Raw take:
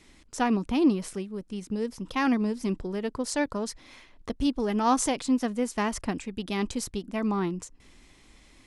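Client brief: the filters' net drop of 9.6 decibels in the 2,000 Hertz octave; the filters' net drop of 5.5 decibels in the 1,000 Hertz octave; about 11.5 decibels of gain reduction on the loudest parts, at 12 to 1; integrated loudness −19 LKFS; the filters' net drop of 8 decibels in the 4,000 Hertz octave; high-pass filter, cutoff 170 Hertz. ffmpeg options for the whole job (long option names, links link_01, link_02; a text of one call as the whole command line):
ffmpeg -i in.wav -af "highpass=170,equalizer=frequency=1000:width_type=o:gain=-5,equalizer=frequency=2000:width_type=o:gain=-8.5,equalizer=frequency=4000:width_type=o:gain=-8,acompressor=threshold=-29dB:ratio=12,volume=16.5dB" out.wav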